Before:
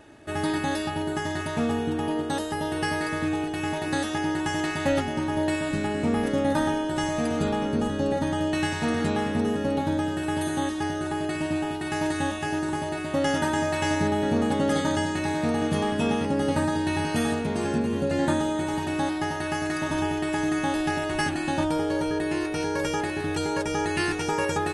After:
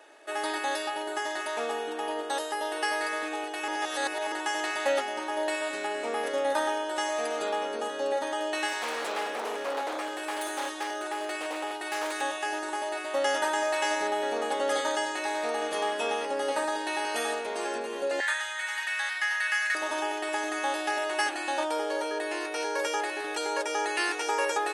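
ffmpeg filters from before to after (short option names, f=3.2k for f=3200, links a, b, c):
-filter_complex "[0:a]asettb=1/sr,asplit=3[a][b][c];[a]atrim=end=8.684[d];[b]atrim=start=8.68:end=12.21,asetpts=PTS-STARTPTS,afade=t=in:d=0.004:c=qsin,afade=t=out:st=3.526:d=0.004:c=qsin,aeval=exprs='0.075*(abs(mod(val(0)/0.075+3,4)-2)-1)':c=same[e];[c]atrim=start=12.206[f];[d][e]acrossfade=d=0.004:c1=hsin:c2=qsin[g];[g][f]acrossfade=d=0.004:c1=qsin:c2=hsin,asettb=1/sr,asplit=3[h][i][j];[h]atrim=end=18.204[k];[i]atrim=start=18.2:end=19.75,asetpts=PTS-STARTPTS,afade=t=in:d=0.004:c=qsin,afade=t=out:st=1.546:d=0.004:c=qsin,highpass=f=1.8k:t=q:w=3.3[l];[j]atrim=start=19.746[m];[k][l]acrossfade=d=0.004:c1=hsin:c2=qsin[n];[n][m]acrossfade=d=0.004:c1=qsin:c2=hsin,asplit=3[o][p][q];[o]atrim=end=3.682[r];[p]atrim=start=3.678:end=4.322,asetpts=PTS-STARTPTS,areverse[s];[q]atrim=start=4.318[t];[r][s]acrossfade=d=0.004:c1=hsin:c2=hsin[u];[u][t]acrossfade=d=0.004:c1=hsin:c2=hsin,highpass=f=450:w=0.5412,highpass=f=450:w=1.3066"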